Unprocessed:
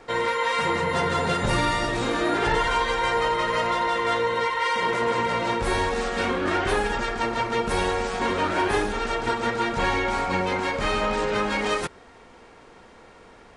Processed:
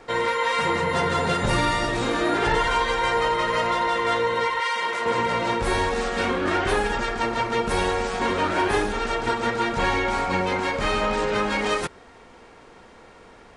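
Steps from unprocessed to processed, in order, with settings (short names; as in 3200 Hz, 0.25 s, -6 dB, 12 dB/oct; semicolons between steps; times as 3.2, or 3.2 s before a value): 4.6–5.06 HPF 890 Hz 6 dB/oct; gain +1 dB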